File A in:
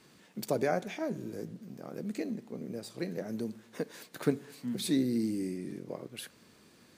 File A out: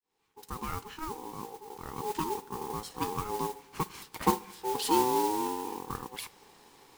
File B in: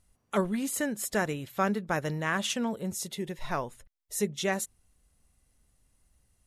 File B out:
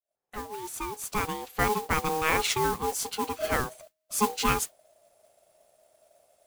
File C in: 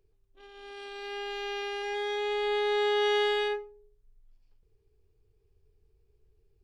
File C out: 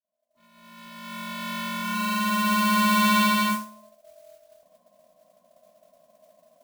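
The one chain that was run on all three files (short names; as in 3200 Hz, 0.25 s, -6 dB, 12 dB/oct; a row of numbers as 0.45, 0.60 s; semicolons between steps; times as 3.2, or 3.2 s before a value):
opening faded in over 2.16 s; ring modulator 630 Hz; modulation noise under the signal 12 dB; normalise peaks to -9 dBFS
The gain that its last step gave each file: +5.5, +6.5, +9.0 dB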